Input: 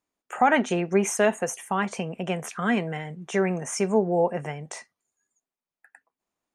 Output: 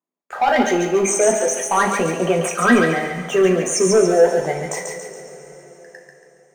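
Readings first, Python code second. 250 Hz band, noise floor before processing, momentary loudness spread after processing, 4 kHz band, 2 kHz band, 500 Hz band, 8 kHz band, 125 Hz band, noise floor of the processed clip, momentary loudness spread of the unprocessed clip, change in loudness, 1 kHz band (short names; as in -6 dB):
+6.5 dB, under -85 dBFS, 12 LU, +8.5 dB, +7.5 dB, +9.5 dB, +12.0 dB, +4.5 dB, -55 dBFS, 14 LU, +8.0 dB, +6.5 dB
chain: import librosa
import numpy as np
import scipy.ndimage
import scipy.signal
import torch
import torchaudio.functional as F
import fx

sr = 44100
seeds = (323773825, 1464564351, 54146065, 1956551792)

y = fx.envelope_sharpen(x, sr, power=2.0)
y = scipy.signal.sosfilt(scipy.signal.butter(4, 150.0, 'highpass', fs=sr, output='sos'), y)
y = fx.leveller(y, sr, passes=2)
y = fx.doubler(y, sr, ms=12.0, db=-11)
y = fx.echo_thinned(y, sr, ms=140, feedback_pct=47, hz=1100.0, wet_db=-3.5)
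y = fx.rev_double_slope(y, sr, seeds[0], early_s=0.39, late_s=4.1, knee_db=-19, drr_db=2.5)
y = fx.rider(y, sr, range_db=4, speed_s=2.0)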